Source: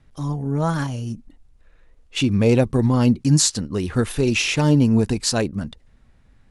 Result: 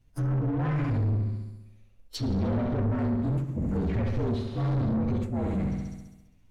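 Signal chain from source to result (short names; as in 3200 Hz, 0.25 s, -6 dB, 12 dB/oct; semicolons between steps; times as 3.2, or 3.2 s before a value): inharmonic rescaling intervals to 118%; sample leveller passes 2; limiter -15.5 dBFS, peak gain reduction 9.5 dB; on a send: flutter echo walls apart 11.5 m, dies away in 1 s; on the sum: soft clip -23 dBFS, distortion -9 dB; high shelf 7300 Hz +8 dB; resonator 230 Hz, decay 0.35 s, harmonics all, mix 50%; negative-ratio compressor -27 dBFS, ratio -0.5; treble ducked by the level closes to 390 Hz, closed at -23 dBFS; low shelf 270 Hz +6.5 dB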